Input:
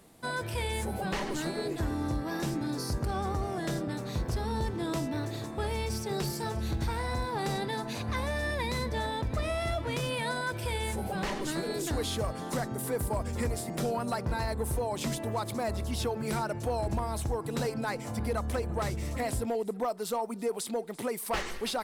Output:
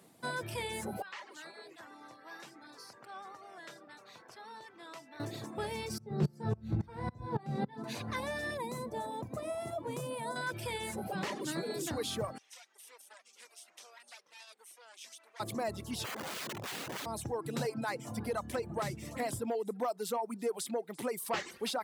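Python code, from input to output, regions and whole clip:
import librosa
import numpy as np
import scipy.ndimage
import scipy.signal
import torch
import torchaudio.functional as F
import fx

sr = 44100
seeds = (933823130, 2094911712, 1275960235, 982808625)

y = fx.chain(x, sr, fx.highpass(hz=1400.0, slope=12),
    fx.tilt_eq(slope=-4.0), at=(1.02, 5.2))
y = fx.chain(y, sr, fx.tilt_eq(slope=-4.0),
    fx.doubler(ms=19.0, db=-6.0),
    fx.tremolo_decay(direction='swelling', hz=3.6, depth_db=20), at=(5.98, 7.84))
y = fx.chain(y, sr, fx.highpass(hz=160.0, slope=6),
    fx.band_shelf(hz=2800.0, db=-11.0, octaves=2.3), at=(8.57, 10.36))
y = fx.chain(y, sr, fx.lower_of_two(delay_ms=0.34),
    fx.bandpass_edges(low_hz=490.0, high_hz=5500.0),
    fx.differentiator(), at=(12.38, 15.4))
y = fx.chain(y, sr, fx.bessel_lowpass(hz=1700.0, order=2),
    fx.overflow_wrap(gain_db=31.5), at=(16.04, 17.06))
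y = fx.dereverb_blind(y, sr, rt60_s=0.69)
y = scipy.signal.sosfilt(scipy.signal.butter(4, 110.0, 'highpass', fs=sr, output='sos'), y)
y = y * librosa.db_to_amplitude(-2.5)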